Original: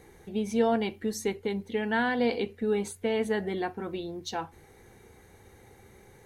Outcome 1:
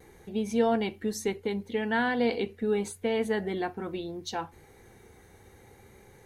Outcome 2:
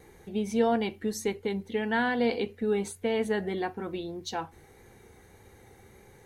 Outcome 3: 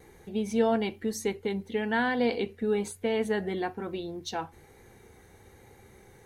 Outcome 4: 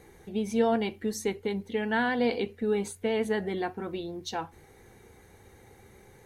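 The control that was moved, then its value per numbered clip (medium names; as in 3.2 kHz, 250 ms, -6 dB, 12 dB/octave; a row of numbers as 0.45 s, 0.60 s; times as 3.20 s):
vibrato, rate: 0.72 Hz, 1.7 Hz, 1.1 Hz, 8.1 Hz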